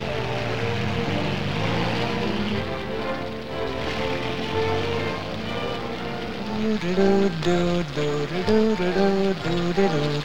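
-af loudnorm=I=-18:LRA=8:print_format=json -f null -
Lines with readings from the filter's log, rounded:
"input_i" : "-24.0",
"input_tp" : "-6.2",
"input_lra" : "4.3",
"input_thresh" : "-34.0",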